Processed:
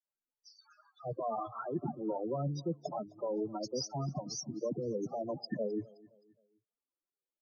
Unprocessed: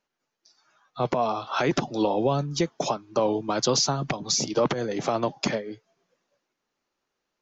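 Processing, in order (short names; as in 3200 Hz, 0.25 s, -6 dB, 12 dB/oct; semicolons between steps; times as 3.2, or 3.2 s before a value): gate with hold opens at -59 dBFS; high shelf 4700 Hz +4.5 dB; reverse; compressor 6:1, threshold -37 dBFS, peak gain reduction 18.5 dB; reverse; loudest bins only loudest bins 8; dispersion lows, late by 64 ms, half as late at 1400 Hz; on a send: feedback echo 0.261 s, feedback 40%, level -23 dB; on the sum: gain +5 dB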